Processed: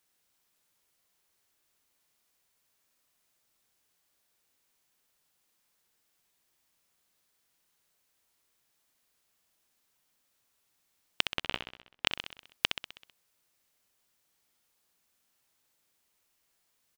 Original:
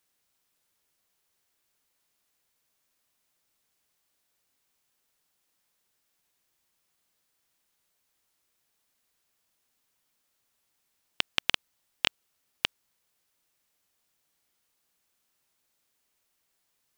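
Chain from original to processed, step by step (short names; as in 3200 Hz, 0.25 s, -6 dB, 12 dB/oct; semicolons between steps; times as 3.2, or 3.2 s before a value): 11.33–12.07 LPF 1100 Hz 6 dB/oct; feedback echo 64 ms, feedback 57%, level -8 dB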